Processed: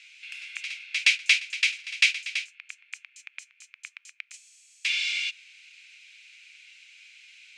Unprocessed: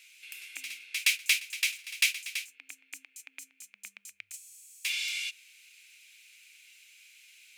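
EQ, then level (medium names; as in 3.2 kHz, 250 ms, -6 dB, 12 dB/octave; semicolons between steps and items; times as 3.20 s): inverse Chebyshev high-pass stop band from 240 Hz, stop band 70 dB; low-pass 8.4 kHz 12 dB/octave; distance through air 94 m; +7.5 dB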